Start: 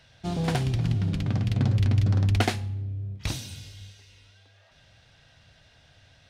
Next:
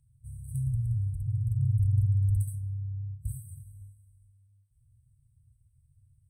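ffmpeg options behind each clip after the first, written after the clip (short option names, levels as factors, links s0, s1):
-af "afftfilt=real='re*(1-between(b*sr/4096,140,7900))':imag='im*(1-between(b*sr/4096,140,7900))':win_size=4096:overlap=0.75,volume=0.75"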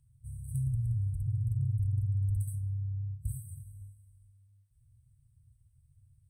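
-af "acompressor=threshold=0.0447:ratio=6"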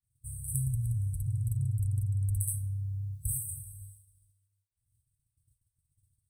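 -af "agate=range=0.0224:threshold=0.00251:ratio=3:detection=peak,aexciter=amount=4:drive=6:freq=3100"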